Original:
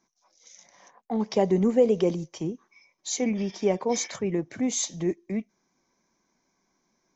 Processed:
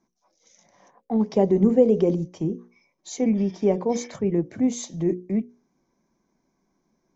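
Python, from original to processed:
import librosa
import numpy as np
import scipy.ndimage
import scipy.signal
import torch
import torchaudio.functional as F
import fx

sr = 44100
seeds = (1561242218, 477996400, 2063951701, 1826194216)

y = fx.tilt_shelf(x, sr, db=7.0, hz=810.0)
y = fx.hum_notches(y, sr, base_hz=60, count=9)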